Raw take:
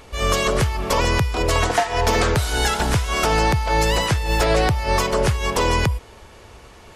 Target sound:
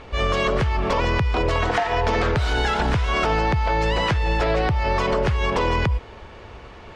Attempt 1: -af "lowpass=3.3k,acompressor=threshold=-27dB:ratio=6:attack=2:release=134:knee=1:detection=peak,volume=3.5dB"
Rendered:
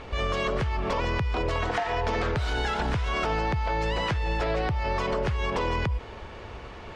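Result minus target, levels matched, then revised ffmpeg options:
compressor: peak gain reduction +6.5 dB
-af "lowpass=3.3k,acompressor=threshold=-19.5dB:ratio=6:attack=2:release=134:knee=1:detection=peak,volume=3.5dB"

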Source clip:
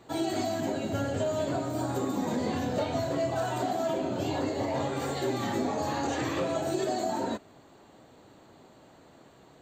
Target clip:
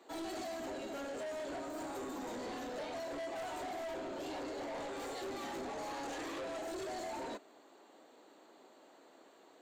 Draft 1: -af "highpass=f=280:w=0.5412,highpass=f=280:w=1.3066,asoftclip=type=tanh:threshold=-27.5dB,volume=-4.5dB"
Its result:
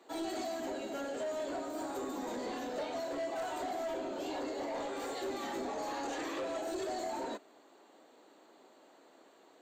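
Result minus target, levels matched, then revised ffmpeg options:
soft clip: distortion -6 dB
-af "highpass=f=280:w=0.5412,highpass=f=280:w=1.3066,asoftclip=type=tanh:threshold=-34.5dB,volume=-4.5dB"

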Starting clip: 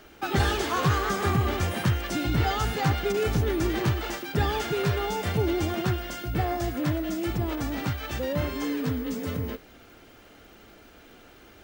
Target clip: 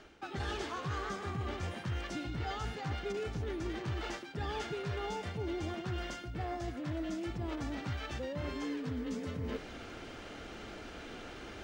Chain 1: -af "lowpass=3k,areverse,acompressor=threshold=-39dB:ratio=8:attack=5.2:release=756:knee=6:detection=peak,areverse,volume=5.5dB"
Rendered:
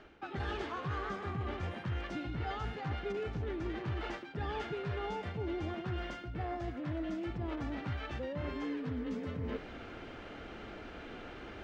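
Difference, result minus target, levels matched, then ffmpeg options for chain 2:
8000 Hz band -11.5 dB
-af "lowpass=6.9k,areverse,acompressor=threshold=-39dB:ratio=8:attack=5.2:release=756:knee=6:detection=peak,areverse,volume=5.5dB"

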